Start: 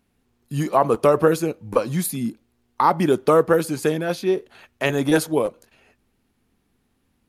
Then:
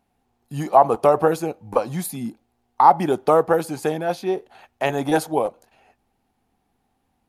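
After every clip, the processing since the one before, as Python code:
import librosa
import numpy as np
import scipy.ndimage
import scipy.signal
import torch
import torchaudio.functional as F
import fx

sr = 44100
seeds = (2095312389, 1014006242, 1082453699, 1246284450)

y = fx.peak_eq(x, sr, hz=780.0, db=14.5, octaves=0.55)
y = F.gain(torch.from_numpy(y), -4.0).numpy()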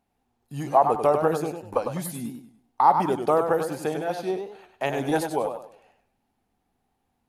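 y = fx.echo_warbled(x, sr, ms=98, feedback_pct=33, rate_hz=2.8, cents=131, wet_db=-7)
y = F.gain(torch.from_numpy(y), -5.0).numpy()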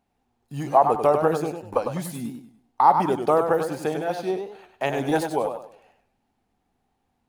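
y = scipy.ndimage.median_filter(x, 3, mode='constant')
y = F.gain(torch.from_numpy(y), 1.5).numpy()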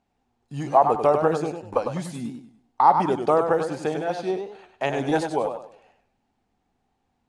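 y = scipy.signal.sosfilt(scipy.signal.butter(4, 8700.0, 'lowpass', fs=sr, output='sos'), x)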